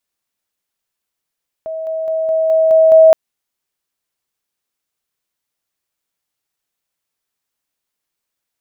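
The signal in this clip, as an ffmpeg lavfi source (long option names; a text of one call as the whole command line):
ffmpeg -f lavfi -i "aevalsrc='pow(10,(-21+3*floor(t/0.21))/20)*sin(2*PI*642*t)':duration=1.47:sample_rate=44100" out.wav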